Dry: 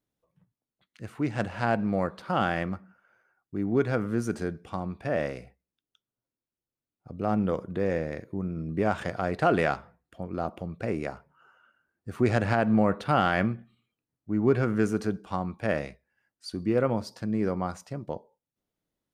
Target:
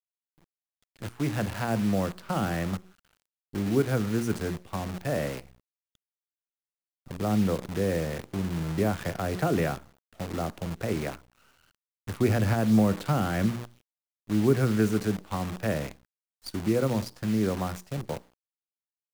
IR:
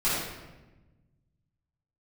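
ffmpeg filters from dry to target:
-filter_complex "[0:a]acrossover=split=190|370|2500[link_01][link_02][link_03][link_04];[link_01]acontrast=24[link_05];[link_05][link_02][link_03][link_04]amix=inputs=4:normalize=0,bandreject=frequency=60:width_type=h:width=6,bandreject=frequency=120:width_type=h:width=6,bandreject=frequency=180:width_type=h:width=6,bandreject=frequency=240:width_type=h:width=6,bandreject=frequency=300:width_type=h:width=6,bandreject=frequency=360:width_type=h:width=6,acrossover=split=470[link_06][link_07];[link_07]acompressor=threshold=-30dB:ratio=6[link_08];[link_06][link_08]amix=inputs=2:normalize=0,acrusher=bits=7:dc=4:mix=0:aa=0.000001"

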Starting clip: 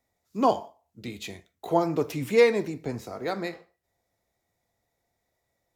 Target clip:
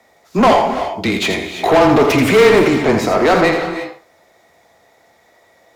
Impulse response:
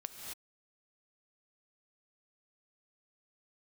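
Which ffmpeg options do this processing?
-filter_complex "[0:a]afreqshift=-18,asplit=2[link_01][link_02];[link_02]highpass=frequency=720:poles=1,volume=31dB,asoftclip=type=tanh:threshold=-8.5dB[link_03];[link_01][link_03]amix=inputs=2:normalize=0,lowpass=frequency=1900:poles=1,volume=-6dB,asplit=2[link_04][link_05];[1:a]atrim=start_sample=2205,adelay=83[link_06];[link_05][link_06]afir=irnorm=-1:irlink=0,volume=-3.5dB[link_07];[link_04][link_07]amix=inputs=2:normalize=0,volume=5.5dB"

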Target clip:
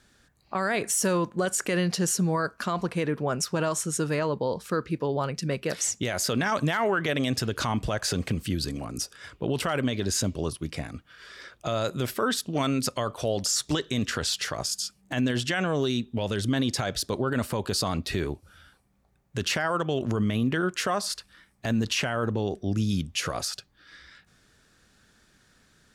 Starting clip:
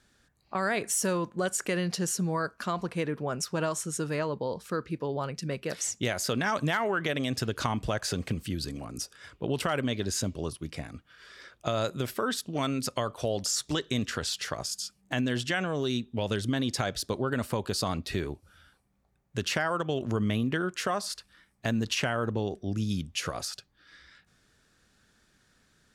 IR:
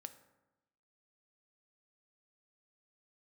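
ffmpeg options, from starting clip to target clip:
-af "alimiter=limit=-21dB:level=0:latency=1:release=15,volume=4.5dB"

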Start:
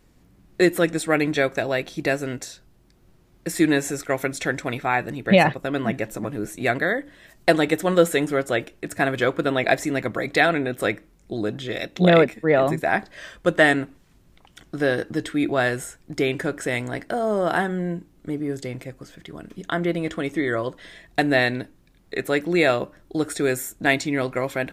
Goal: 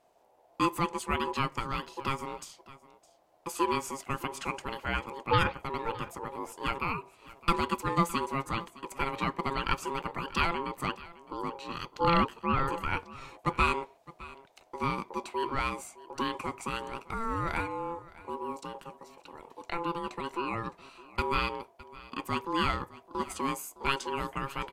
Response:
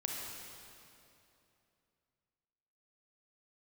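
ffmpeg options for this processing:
-af "aeval=exprs='val(0)*sin(2*PI*680*n/s)':channel_layout=same,aecho=1:1:612:0.106,volume=-7dB"

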